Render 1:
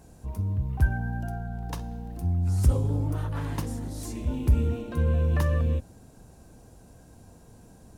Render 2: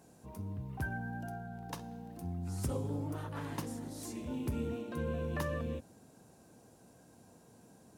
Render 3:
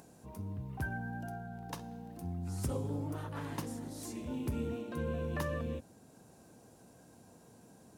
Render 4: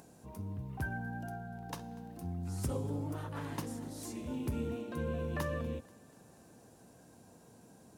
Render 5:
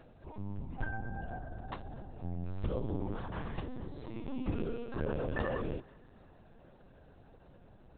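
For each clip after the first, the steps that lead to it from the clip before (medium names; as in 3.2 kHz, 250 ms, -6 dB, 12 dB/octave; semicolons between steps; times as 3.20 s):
high-pass 160 Hz 12 dB/octave; trim -5 dB
upward compressor, threshold -54 dBFS
thinning echo 242 ms, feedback 65%, level -22 dB
LPC vocoder at 8 kHz pitch kept; trim +1.5 dB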